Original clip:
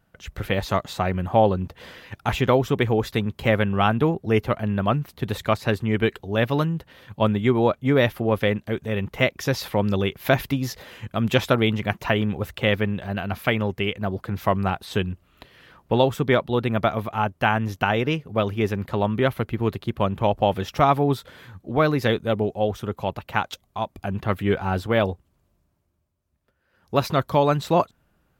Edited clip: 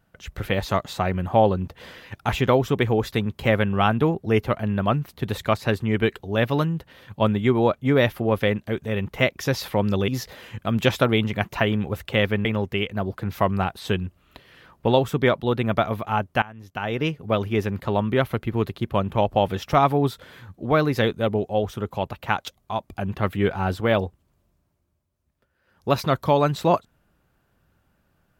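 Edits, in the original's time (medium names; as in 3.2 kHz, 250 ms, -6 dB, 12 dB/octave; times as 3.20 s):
10.08–10.57 s: delete
12.94–13.51 s: delete
17.48–18.13 s: fade in quadratic, from -20.5 dB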